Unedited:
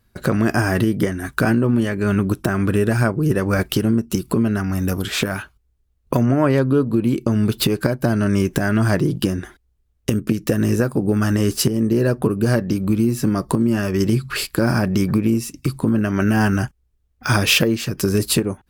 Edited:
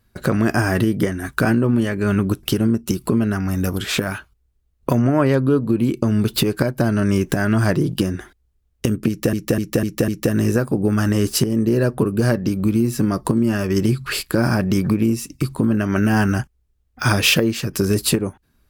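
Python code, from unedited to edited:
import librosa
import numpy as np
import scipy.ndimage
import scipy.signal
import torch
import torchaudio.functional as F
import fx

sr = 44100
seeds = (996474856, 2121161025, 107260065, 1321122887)

y = fx.edit(x, sr, fx.cut(start_s=2.43, length_s=1.24),
    fx.repeat(start_s=10.32, length_s=0.25, count=5), tone=tone)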